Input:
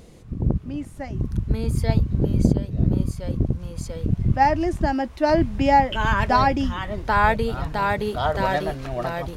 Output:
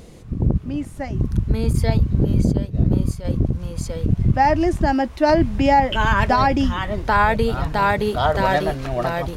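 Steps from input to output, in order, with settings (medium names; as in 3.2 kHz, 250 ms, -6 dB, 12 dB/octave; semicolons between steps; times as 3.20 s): peak limiter -11.5 dBFS, peak gain reduction 8 dB; 1.73–3.25 s: expander -24 dBFS; trim +4.5 dB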